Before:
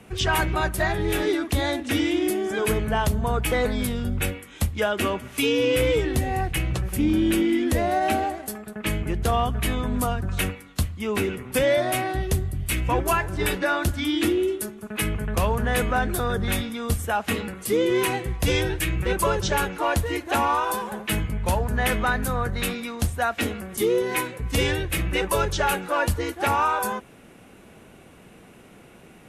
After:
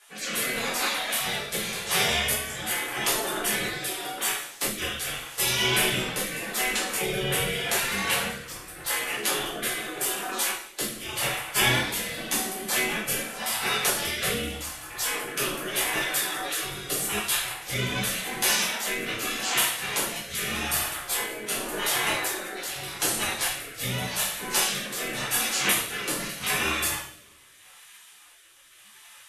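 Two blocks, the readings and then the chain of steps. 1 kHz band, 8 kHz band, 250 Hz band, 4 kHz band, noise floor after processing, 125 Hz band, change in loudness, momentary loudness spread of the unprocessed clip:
−6.5 dB, +6.5 dB, −11.0 dB, +4.5 dB, −51 dBFS, −11.5 dB, −1.5 dB, 6 LU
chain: gate on every frequency bin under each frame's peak −20 dB weak
coupled-rooms reverb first 0.62 s, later 1.6 s, DRR −7.5 dB
rotating-speaker cabinet horn 0.85 Hz
level +4 dB

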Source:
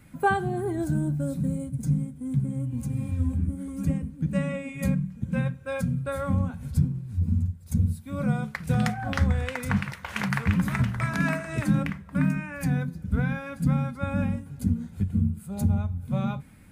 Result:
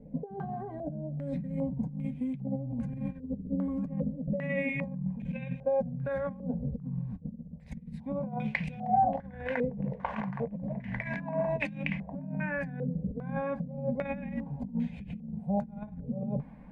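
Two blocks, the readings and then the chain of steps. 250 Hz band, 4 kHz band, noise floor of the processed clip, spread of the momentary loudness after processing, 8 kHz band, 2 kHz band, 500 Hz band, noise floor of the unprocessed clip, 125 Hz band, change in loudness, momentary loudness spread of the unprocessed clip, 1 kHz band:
−6.0 dB, −12.0 dB, −48 dBFS, 8 LU, below −25 dB, −6.0 dB, +0.5 dB, −47 dBFS, −11.0 dB, −6.5 dB, 5 LU, −1.0 dB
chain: compressor whose output falls as the input rises −33 dBFS, ratio −1
phaser with its sweep stopped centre 350 Hz, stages 6
low-pass on a step sequencer 2.5 Hz 460–2,500 Hz

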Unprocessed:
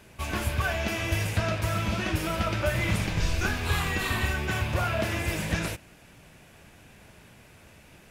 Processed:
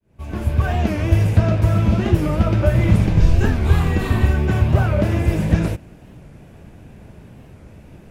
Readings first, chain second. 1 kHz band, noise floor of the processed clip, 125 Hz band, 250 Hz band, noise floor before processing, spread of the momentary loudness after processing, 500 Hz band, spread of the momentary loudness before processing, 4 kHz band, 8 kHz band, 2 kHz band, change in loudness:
+4.0 dB, −44 dBFS, +13.5 dB, +12.0 dB, −54 dBFS, 5 LU, +8.5 dB, 3 LU, −3.0 dB, can't be measured, −0.5 dB, +10.0 dB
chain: fade in at the beginning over 0.76 s
tilt shelving filter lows +9 dB, about 840 Hz
wow of a warped record 45 rpm, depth 160 cents
level +5 dB

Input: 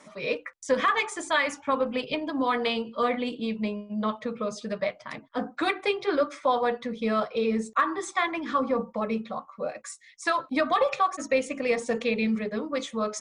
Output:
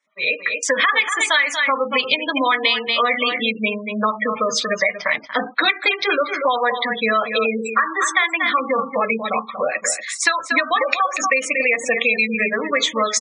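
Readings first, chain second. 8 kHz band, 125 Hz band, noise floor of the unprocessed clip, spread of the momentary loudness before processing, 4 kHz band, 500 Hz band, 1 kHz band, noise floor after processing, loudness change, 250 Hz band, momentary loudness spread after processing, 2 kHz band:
+15.5 dB, can't be measured, −55 dBFS, 8 LU, +14.5 dB, +5.0 dB, +7.5 dB, −37 dBFS, +9.0 dB, +1.5 dB, 5 LU, +14.0 dB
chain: in parallel at −3.5 dB: log-companded quantiser 4 bits
on the sum: high-shelf EQ 2,700 Hz −2.5 dB
single-tap delay 235 ms −9.5 dB
gate on every frequency bin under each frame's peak −25 dB strong
automatic gain control gain up to 10.5 dB
graphic EQ with 10 bands 2,000 Hz +10 dB, 4,000 Hz +11 dB, 8,000 Hz +8 dB
downward expander −25 dBFS
high-pass filter 530 Hz 6 dB per octave
downward compressor 5 to 1, threshold −14 dBFS, peak gain reduction 13 dB
level −1 dB

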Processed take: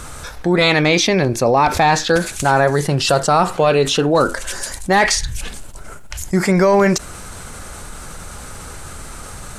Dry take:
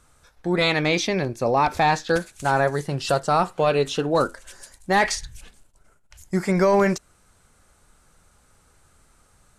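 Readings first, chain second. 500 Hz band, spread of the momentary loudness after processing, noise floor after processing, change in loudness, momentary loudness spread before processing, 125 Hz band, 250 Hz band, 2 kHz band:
+6.0 dB, 20 LU, −34 dBFS, +6.5 dB, 8 LU, +7.5 dB, +7.0 dB, +7.0 dB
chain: envelope flattener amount 50%
level +4.5 dB

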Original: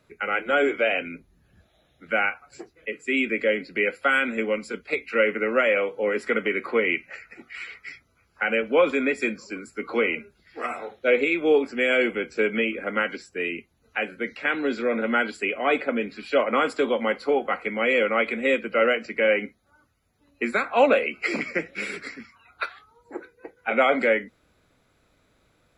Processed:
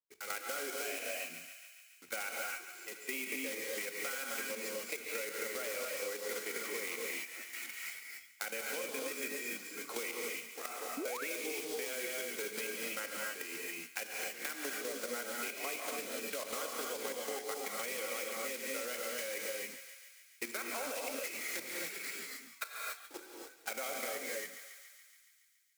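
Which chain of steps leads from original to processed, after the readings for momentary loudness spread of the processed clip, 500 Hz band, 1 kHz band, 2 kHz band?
7 LU, −18.0 dB, −16.5 dB, −15.0 dB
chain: one scale factor per block 3 bits
bass and treble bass −11 dB, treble +9 dB
output level in coarse steps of 12 dB
noise gate −57 dBFS, range −26 dB
on a send: feedback echo with a high-pass in the loop 141 ms, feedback 71%, high-pass 820 Hz, level −17 dB
on the sum: reverb whose tail is shaped and stops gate 310 ms rising, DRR −0.5 dB
sound drawn into the spectrogram rise, 0:10.97–0:11.28, 250–2,400 Hz −28 dBFS
downward compressor, threshold −29 dBFS, peak gain reduction 11 dB
level −7.5 dB

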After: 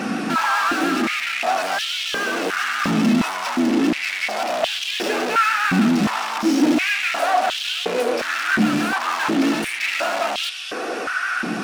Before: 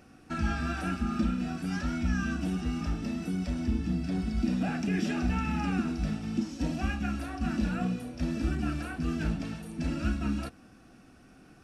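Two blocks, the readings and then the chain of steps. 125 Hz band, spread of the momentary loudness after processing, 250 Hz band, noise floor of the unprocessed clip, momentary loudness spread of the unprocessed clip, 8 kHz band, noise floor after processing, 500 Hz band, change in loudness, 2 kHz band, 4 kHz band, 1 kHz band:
−0.5 dB, 5 LU, +8.5 dB, −56 dBFS, 4 LU, +17.5 dB, −28 dBFS, +17.0 dB, +11.5 dB, +18.5 dB, +21.5 dB, +18.5 dB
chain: pitch vibrato 7.3 Hz 47 cents
mid-hump overdrive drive 43 dB, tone 3,700 Hz, clips at −16.5 dBFS
high-pass on a step sequencer 2.8 Hz 200–3,200 Hz

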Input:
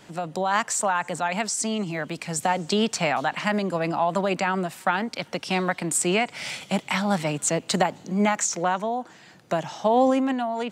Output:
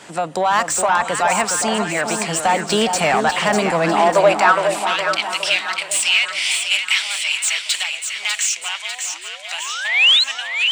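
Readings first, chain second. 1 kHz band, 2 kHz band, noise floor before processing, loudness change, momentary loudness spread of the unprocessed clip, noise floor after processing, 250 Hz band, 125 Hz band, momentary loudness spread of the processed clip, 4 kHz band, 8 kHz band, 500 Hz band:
+6.5 dB, +11.0 dB, −50 dBFS, +7.5 dB, 7 LU, −33 dBFS, −1.0 dB, −1.0 dB, 9 LU, +15.5 dB, +7.5 dB, +5.5 dB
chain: parametric band 8,600 Hz +12.5 dB 0.8 octaves
mid-hump overdrive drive 23 dB, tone 2,600 Hz, clips at 0 dBFS
sound drawn into the spectrogram rise, 0:09.13–0:10.24, 300–4,300 Hz −14 dBFS
high-pass filter sweep 62 Hz → 2,800 Hz, 0:03.50–0:04.79
on a send: echo with a time of its own for lows and highs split 1,200 Hz, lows 414 ms, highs 597 ms, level −6 dB
on the sum: level −4.5 dB

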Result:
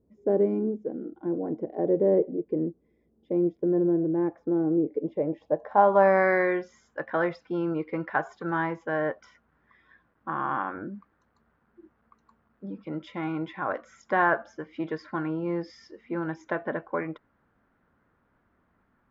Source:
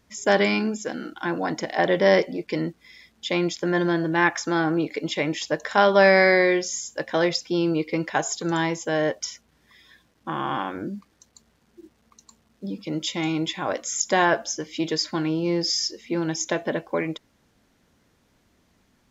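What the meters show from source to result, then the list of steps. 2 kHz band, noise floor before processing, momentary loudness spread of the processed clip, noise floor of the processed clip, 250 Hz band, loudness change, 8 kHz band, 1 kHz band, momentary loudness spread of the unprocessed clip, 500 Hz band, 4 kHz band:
−7.5 dB, −65 dBFS, 15 LU, −70 dBFS, −3.0 dB, −4.0 dB, can't be measured, −2.5 dB, 13 LU, −3.0 dB, below −25 dB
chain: low-pass filter sweep 420 Hz → 1,400 Hz, 0:04.94–0:06.38
level −6 dB

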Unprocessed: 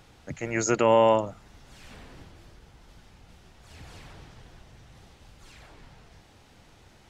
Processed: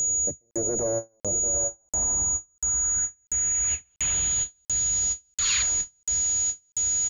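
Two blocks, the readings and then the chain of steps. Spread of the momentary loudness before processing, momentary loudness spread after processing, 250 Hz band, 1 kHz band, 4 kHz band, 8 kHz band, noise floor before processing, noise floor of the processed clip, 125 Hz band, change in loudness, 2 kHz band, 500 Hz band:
19 LU, 5 LU, −5.5 dB, −13.5 dB, +8.5 dB, can't be measured, −56 dBFS, −67 dBFS, −0.5 dB, 0.0 dB, −0.5 dB, −7.0 dB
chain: wavefolder on the positive side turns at −21 dBFS
high-shelf EQ 2,100 Hz +10.5 dB
tube saturation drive 28 dB, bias 0.55
multi-tap delay 640/744 ms −20/−19 dB
low-pass filter sweep 530 Hz → 5,600 Hz, 0:01.30–0:05.03
parametric band 66 Hz +10.5 dB 0.65 octaves
steady tone 6,800 Hz −30 dBFS
brickwall limiter −26.5 dBFS, peak gain reduction 8.5 dB
gain on a spectral selection 0:05.35–0:05.62, 1,000–4,800 Hz +11 dB
regular buffer underruns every 0.69 s, samples 2,048, zero, from 0:00.51
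every ending faded ahead of time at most 370 dB per second
level +8.5 dB

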